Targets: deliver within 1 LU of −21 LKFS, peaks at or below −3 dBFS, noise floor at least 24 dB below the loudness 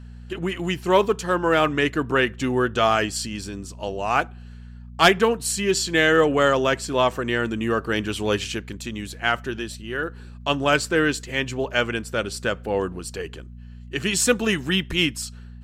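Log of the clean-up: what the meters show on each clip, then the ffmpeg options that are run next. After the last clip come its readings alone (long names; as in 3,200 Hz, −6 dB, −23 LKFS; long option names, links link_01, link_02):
mains hum 60 Hz; hum harmonics up to 240 Hz; level of the hum −37 dBFS; integrated loudness −22.5 LKFS; sample peak −5.0 dBFS; target loudness −21.0 LKFS
→ -af "bandreject=frequency=60:width_type=h:width=4,bandreject=frequency=120:width_type=h:width=4,bandreject=frequency=180:width_type=h:width=4,bandreject=frequency=240:width_type=h:width=4"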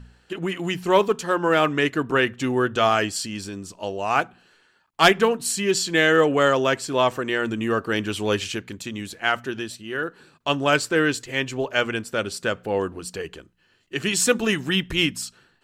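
mains hum none found; integrated loudness −22.5 LKFS; sample peak −5.0 dBFS; target loudness −21.0 LKFS
→ -af "volume=1.5dB"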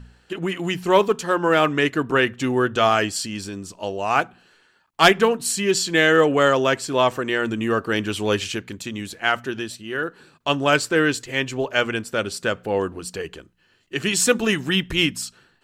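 integrated loudness −21.0 LKFS; sample peak −3.5 dBFS; background noise floor −61 dBFS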